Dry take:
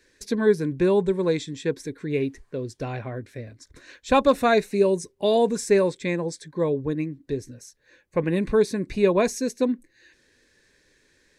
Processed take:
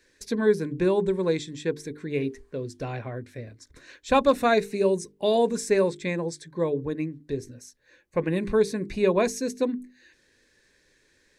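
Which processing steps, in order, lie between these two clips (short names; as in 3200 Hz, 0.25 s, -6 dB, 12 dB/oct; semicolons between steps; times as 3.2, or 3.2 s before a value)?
notches 50/100/150/200/250/300/350/400/450 Hz; gain -1.5 dB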